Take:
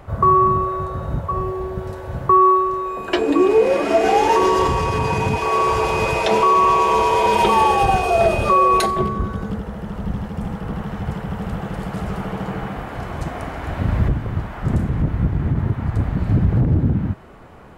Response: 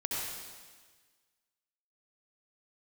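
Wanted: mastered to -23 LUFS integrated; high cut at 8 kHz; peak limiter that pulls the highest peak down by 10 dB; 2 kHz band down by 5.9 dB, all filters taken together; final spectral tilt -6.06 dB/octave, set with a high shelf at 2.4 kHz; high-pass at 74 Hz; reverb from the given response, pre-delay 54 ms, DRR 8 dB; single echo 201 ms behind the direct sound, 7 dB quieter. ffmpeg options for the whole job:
-filter_complex "[0:a]highpass=74,lowpass=8000,equalizer=f=2000:t=o:g=-6,highshelf=f=2400:g=-3.5,alimiter=limit=0.158:level=0:latency=1,aecho=1:1:201:0.447,asplit=2[s0][s1];[1:a]atrim=start_sample=2205,adelay=54[s2];[s1][s2]afir=irnorm=-1:irlink=0,volume=0.224[s3];[s0][s3]amix=inputs=2:normalize=0,volume=1.12"

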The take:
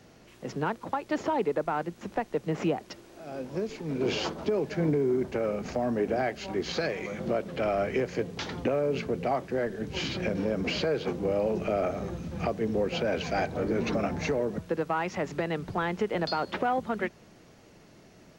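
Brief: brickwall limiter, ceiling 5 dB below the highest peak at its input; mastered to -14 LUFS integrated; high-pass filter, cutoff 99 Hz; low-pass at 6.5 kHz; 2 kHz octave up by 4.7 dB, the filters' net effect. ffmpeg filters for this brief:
-af "highpass=99,lowpass=6500,equalizer=f=2000:t=o:g=6,volume=7.08,alimiter=limit=0.708:level=0:latency=1"

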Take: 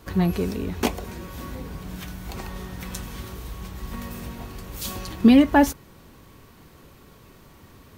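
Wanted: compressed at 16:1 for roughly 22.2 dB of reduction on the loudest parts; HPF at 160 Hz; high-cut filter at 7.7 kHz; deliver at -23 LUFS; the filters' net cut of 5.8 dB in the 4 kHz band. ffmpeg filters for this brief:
-af "highpass=160,lowpass=7700,equalizer=f=4000:t=o:g=-8,acompressor=threshold=0.0224:ratio=16,volume=6.68"

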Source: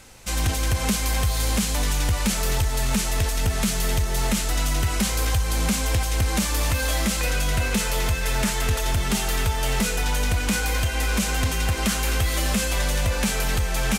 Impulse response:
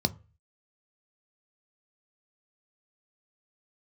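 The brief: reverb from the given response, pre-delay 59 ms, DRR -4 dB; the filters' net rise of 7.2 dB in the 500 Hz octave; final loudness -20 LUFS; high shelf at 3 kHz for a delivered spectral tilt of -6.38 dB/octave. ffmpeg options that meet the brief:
-filter_complex "[0:a]equalizer=f=500:t=o:g=8.5,highshelf=f=3000:g=-4,asplit=2[s0][s1];[1:a]atrim=start_sample=2205,adelay=59[s2];[s1][s2]afir=irnorm=-1:irlink=0,volume=0.668[s3];[s0][s3]amix=inputs=2:normalize=0,volume=0.501"

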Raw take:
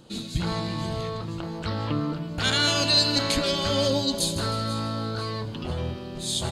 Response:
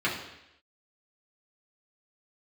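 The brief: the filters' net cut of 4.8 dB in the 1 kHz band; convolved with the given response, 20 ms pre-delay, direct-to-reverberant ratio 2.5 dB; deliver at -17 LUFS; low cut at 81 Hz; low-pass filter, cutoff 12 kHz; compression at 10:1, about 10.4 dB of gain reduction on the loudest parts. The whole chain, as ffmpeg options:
-filter_complex "[0:a]highpass=81,lowpass=12000,equalizer=f=1000:t=o:g=-6.5,acompressor=threshold=0.0447:ratio=10,asplit=2[s0][s1];[1:a]atrim=start_sample=2205,adelay=20[s2];[s1][s2]afir=irnorm=-1:irlink=0,volume=0.188[s3];[s0][s3]amix=inputs=2:normalize=0,volume=4.47"

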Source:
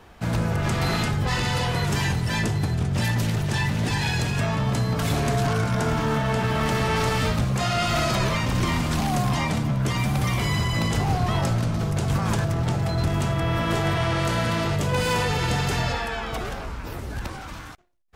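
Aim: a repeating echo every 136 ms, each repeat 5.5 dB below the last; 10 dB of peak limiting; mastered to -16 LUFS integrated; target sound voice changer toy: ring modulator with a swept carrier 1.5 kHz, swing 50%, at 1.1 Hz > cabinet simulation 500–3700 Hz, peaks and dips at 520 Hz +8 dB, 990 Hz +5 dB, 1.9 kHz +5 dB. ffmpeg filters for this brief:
-af "alimiter=limit=0.0794:level=0:latency=1,aecho=1:1:136|272|408|544|680|816|952:0.531|0.281|0.149|0.079|0.0419|0.0222|0.0118,aeval=exprs='val(0)*sin(2*PI*1500*n/s+1500*0.5/1.1*sin(2*PI*1.1*n/s))':c=same,highpass=500,equalizer=f=520:t=q:w=4:g=8,equalizer=f=990:t=q:w=4:g=5,equalizer=f=1900:t=q:w=4:g=5,lowpass=f=3700:w=0.5412,lowpass=f=3700:w=1.3066,volume=3.35"

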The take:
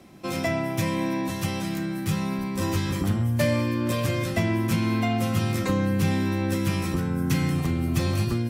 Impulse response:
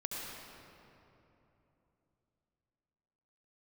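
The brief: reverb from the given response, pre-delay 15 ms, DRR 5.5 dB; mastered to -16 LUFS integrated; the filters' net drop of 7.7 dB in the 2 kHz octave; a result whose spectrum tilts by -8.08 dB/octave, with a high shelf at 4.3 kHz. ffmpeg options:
-filter_complex "[0:a]equalizer=f=2000:t=o:g=-7.5,highshelf=f=4300:g=-8.5,asplit=2[s0][s1];[1:a]atrim=start_sample=2205,adelay=15[s2];[s1][s2]afir=irnorm=-1:irlink=0,volume=0.422[s3];[s0][s3]amix=inputs=2:normalize=0,volume=2.66"

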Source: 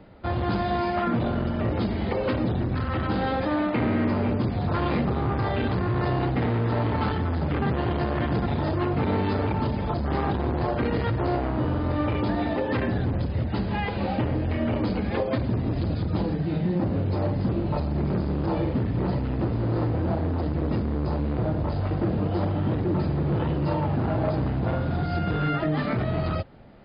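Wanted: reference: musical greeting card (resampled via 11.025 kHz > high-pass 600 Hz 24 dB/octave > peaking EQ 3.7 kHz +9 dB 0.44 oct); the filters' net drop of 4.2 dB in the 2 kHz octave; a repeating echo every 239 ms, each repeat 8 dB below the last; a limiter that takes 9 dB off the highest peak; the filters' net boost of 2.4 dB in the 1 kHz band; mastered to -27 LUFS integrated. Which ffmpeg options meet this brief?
-af "equalizer=f=1000:t=o:g=5.5,equalizer=f=2000:t=o:g=-8.5,alimiter=limit=0.075:level=0:latency=1,aecho=1:1:239|478|717|956|1195:0.398|0.159|0.0637|0.0255|0.0102,aresample=11025,aresample=44100,highpass=f=600:w=0.5412,highpass=f=600:w=1.3066,equalizer=f=3700:t=o:w=0.44:g=9,volume=3.16"

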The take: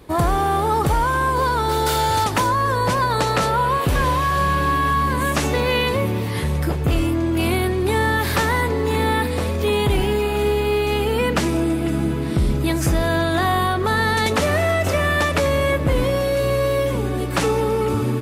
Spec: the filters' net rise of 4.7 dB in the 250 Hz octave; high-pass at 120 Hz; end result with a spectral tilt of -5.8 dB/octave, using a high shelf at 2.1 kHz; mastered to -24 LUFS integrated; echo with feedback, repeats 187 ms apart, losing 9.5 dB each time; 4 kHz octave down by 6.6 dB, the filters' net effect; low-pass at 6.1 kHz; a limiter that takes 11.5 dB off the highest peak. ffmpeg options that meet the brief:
-af "highpass=120,lowpass=6100,equalizer=f=250:t=o:g=7,highshelf=f=2100:g=-3.5,equalizer=f=4000:t=o:g=-4.5,alimiter=limit=0.141:level=0:latency=1,aecho=1:1:187|374|561|748:0.335|0.111|0.0365|0.012"

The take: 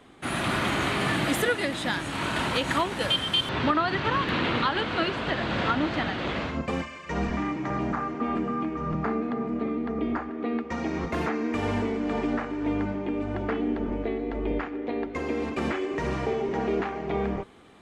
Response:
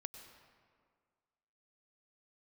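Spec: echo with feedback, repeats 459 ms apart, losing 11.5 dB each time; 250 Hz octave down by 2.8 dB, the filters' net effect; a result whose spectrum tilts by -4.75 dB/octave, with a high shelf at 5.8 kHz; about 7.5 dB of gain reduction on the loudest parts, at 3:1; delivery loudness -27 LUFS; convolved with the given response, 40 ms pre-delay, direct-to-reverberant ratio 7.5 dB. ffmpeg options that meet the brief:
-filter_complex "[0:a]equalizer=f=250:t=o:g=-3.5,highshelf=f=5800:g=4.5,acompressor=threshold=0.0316:ratio=3,aecho=1:1:459|918|1377:0.266|0.0718|0.0194,asplit=2[s0][s1];[1:a]atrim=start_sample=2205,adelay=40[s2];[s1][s2]afir=irnorm=-1:irlink=0,volume=0.668[s3];[s0][s3]amix=inputs=2:normalize=0,volume=1.68"

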